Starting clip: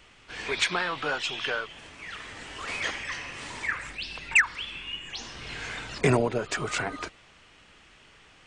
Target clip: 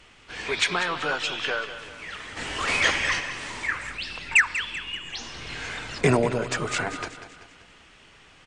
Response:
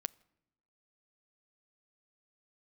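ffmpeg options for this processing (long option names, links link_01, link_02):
-filter_complex "[0:a]asplit=3[link_01][link_02][link_03];[link_01]afade=type=out:start_time=2.36:duration=0.02[link_04];[link_02]acontrast=83,afade=type=in:start_time=2.36:duration=0.02,afade=type=out:start_time=3.19:duration=0.02[link_05];[link_03]afade=type=in:start_time=3.19:duration=0.02[link_06];[link_04][link_05][link_06]amix=inputs=3:normalize=0,aecho=1:1:192|384|576|768|960:0.251|0.121|0.0579|0.0278|0.0133[link_07];[1:a]atrim=start_sample=2205,asetrate=28224,aresample=44100[link_08];[link_07][link_08]afir=irnorm=-1:irlink=0,volume=1.5dB"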